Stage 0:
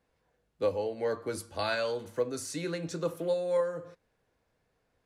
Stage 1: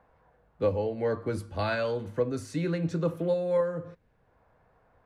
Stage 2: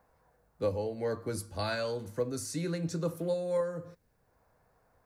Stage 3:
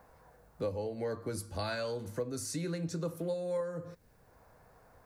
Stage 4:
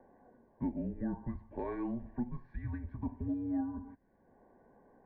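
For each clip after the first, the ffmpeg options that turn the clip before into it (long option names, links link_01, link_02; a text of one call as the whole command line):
ffmpeg -i in.wav -filter_complex "[0:a]bass=frequency=250:gain=10,treble=frequency=4000:gain=-11,acrossover=split=650|1300[link_01][link_02][link_03];[link_02]acompressor=mode=upward:threshold=-54dB:ratio=2.5[link_04];[link_01][link_04][link_03]amix=inputs=3:normalize=0,volume=1.5dB" out.wav
ffmpeg -i in.wav -af "aexciter=amount=3.9:drive=6:freq=4400,volume=-4.5dB" out.wav
ffmpeg -i in.wav -af "acompressor=threshold=-50dB:ratio=2,volume=8dB" out.wav
ffmpeg -i in.wav -af "highpass=frequency=230:width_type=q:width=0.5412,highpass=frequency=230:width_type=q:width=1.307,lowpass=frequency=2000:width_type=q:width=0.5176,lowpass=frequency=2000:width_type=q:width=0.7071,lowpass=frequency=2000:width_type=q:width=1.932,afreqshift=-250,asuperstop=centerf=1300:order=8:qfactor=3.6" out.wav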